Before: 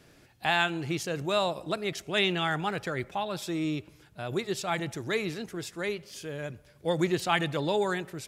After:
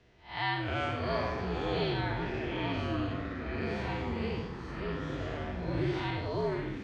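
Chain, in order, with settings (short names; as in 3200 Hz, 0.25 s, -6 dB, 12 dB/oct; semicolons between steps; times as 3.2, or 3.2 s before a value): time blur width 0.204 s; frequency shift -64 Hz; varispeed +21%; notch comb 270 Hz; de-hum 48.99 Hz, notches 38; echoes that change speed 0.187 s, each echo -5 st, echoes 3; air absorption 190 m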